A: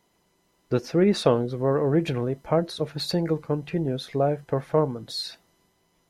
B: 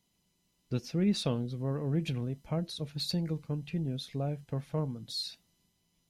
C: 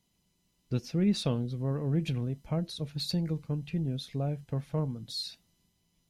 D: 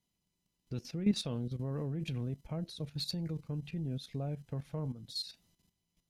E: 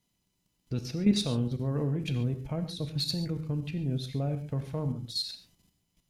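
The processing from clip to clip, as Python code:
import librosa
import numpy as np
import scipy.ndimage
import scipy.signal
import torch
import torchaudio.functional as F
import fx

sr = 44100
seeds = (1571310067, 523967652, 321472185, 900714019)

y1 = fx.band_shelf(x, sr, hz=790.0, db=-11.0, octaves=2.9)
y1 = y1 * librosa.db_to_amplitude(-4.5)
y2 = fx.low_shelf(y1, sr, hz=150.0, db=4.5)
y3 = fx.level_steps(y2, sr, step_db=12)
y4 = fx.rev_gated(y3, sr, seeds[0], gate_ms=160, shape='flat', drr_db=8.0)
y4 = y4 * librosa.db_to_amplitude(6.0)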